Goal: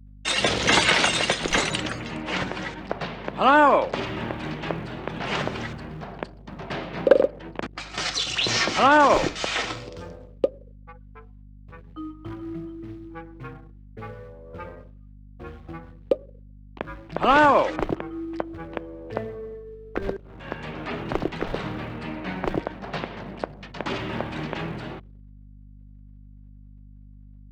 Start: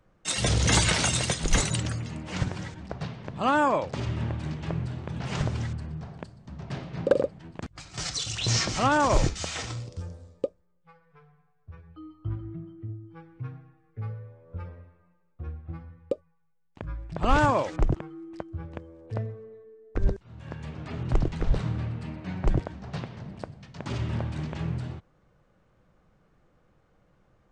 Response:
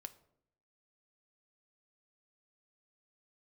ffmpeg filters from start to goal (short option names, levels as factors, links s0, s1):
-filter_complex "[0:a]asplit=2[s0][s1];[s1]acompressor=threshold=0.0224:ratio=12,volume=0.794[s2];[s0][s2]amix=inputs=2:normalize=0,highshelf=f=3700:g=11,agate=range=0.0891:threshold=0.00141:ratio=16:detection=peak,asplit=2[s3][s4];[1:a]atrim=start_sample=2205,asetrate=30870,aresample=44100[s5];[s4][s5]afir=irnorm=-1:irlink=0,volume=0.668[s6];[s3][s6]amix=inputs=2:normalize=0,anlmdn=0.0398,acrusher=bits=7:mode=log:mix=0:aa=0.000001,acrossover=split=220 3500:gain=0.1 1 0.0794[s7][s8][s9];[s7][s8][s9]amix=inputs=3:normalize=0,aeval=exprs='val(0)+0.00447*(sin(2*PI*50*n/s)+sin(2*PI*2*50*n/s)/2+sin(2*PI*3*50*n/s)/3+sin(2*PI*4*50*n/s)/4+sin(2*PI*5*50*n/s)/5)':c=same,volume=1.26"